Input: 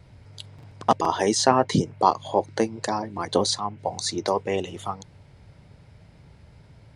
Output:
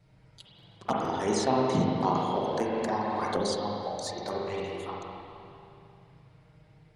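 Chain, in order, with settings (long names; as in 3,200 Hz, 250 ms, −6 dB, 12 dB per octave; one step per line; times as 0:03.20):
flanger swept by the level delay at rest 7.1 ms, full sweep at −17 dBFS
spring reverb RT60 2.7 s, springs 38/43/58 ms, chirp 50 ms, DRR −3.5 dB
0:02.15–0:03.40: multiband upward and downward compressor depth 100%
level −7.5 dB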